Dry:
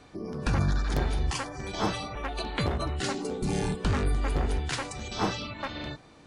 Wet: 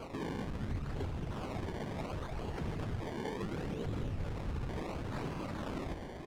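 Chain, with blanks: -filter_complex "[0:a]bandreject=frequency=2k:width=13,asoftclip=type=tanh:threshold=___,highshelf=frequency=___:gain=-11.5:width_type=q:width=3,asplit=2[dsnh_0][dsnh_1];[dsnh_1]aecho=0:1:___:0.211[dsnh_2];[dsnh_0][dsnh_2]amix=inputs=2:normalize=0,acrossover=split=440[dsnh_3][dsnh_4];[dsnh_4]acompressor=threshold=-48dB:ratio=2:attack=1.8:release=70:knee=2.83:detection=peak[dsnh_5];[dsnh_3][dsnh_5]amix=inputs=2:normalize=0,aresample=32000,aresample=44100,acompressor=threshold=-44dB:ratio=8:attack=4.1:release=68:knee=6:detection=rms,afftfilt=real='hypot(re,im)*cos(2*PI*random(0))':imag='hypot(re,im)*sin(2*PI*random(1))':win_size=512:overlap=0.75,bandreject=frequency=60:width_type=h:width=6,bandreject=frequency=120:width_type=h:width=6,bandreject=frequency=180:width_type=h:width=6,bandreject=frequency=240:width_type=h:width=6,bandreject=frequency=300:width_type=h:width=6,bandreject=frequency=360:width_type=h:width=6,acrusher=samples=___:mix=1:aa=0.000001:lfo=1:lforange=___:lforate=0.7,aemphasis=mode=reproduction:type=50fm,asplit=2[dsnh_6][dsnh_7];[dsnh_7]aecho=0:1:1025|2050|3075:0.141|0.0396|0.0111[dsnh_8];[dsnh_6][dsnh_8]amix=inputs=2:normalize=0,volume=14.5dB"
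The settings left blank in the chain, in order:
-31.5dB, 6.2k, 93, 23, 23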